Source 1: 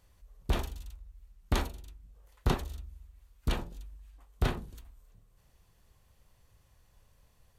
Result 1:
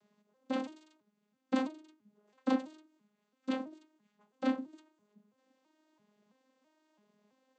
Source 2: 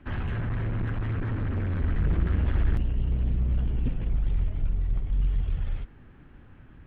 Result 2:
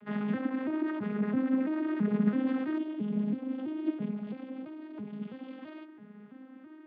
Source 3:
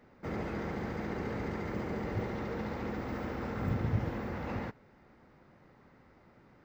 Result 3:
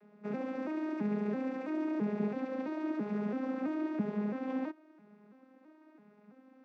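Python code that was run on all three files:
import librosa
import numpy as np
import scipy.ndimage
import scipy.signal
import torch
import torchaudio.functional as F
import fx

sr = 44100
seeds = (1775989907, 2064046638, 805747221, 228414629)

y = fx.vocoder_arp(x, sr, chord='major triad', root=56, every_ms=332)
y = y * librosa.db_to_amplitude(2.5)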